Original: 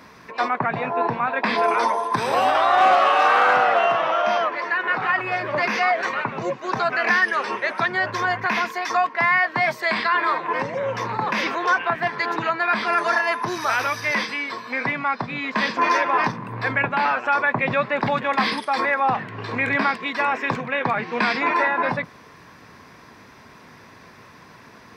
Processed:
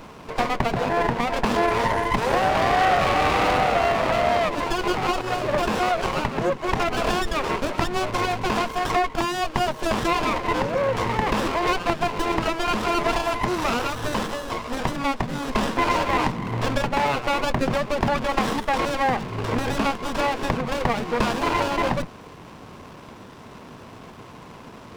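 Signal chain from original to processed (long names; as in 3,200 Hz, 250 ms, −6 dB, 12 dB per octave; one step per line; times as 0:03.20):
downward compressor 2.5 to 1, threshold −24 dBFS, peak gain reduction 8 dB
windowed peak hold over 17 samples
level +6 dB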